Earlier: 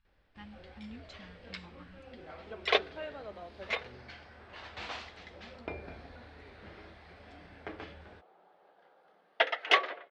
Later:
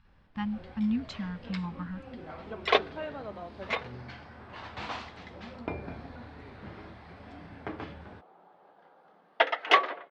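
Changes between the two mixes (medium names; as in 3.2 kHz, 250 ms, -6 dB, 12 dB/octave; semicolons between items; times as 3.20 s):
speech +9.5 dB; master: add graphic EQ 125/250/1000 Hz +11/+7/+7 dB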